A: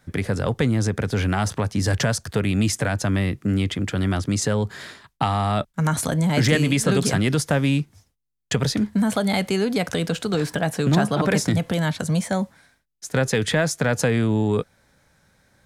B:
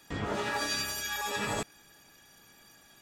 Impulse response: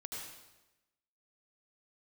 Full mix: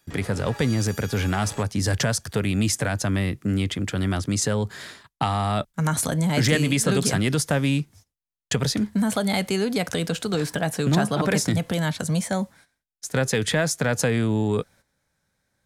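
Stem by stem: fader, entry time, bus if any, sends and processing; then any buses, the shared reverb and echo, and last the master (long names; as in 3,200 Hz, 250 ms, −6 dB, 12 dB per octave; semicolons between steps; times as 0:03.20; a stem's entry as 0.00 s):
−2.0 dB, 0.00 s, no send, no processing
+2.5 dB, 0.00 s, no send, automatic ducking −12 dB, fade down 0.25 s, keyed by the first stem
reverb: not used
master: noise gate −49 dBFS, range −12 dB; high-shelf EQ 4,900 Hz +5 dB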